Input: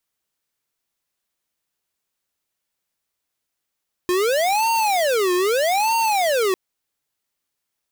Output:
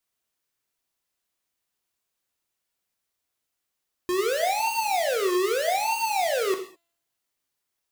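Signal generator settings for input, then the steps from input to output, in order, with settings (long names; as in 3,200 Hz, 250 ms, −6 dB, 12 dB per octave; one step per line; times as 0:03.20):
siren wail 357–916 Hz 0.8 per second square −19 dBFS 2.45 s
brickwall limiter −23 dBFS
tuned comb filter 340 Hz, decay 0.84 s, mix 30%
reverb whose tail is shaped and stops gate 230 ms falling, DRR 4.5 dB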